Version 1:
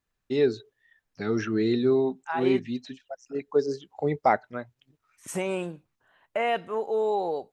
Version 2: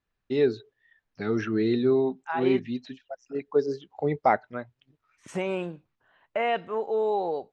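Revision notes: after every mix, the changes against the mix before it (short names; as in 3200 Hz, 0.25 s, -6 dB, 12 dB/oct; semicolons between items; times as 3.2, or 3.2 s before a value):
master: add LPF 4400 Hz 12 dB/oct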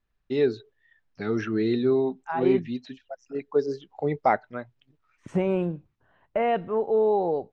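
second voice: add tilt -3.5 dB/oct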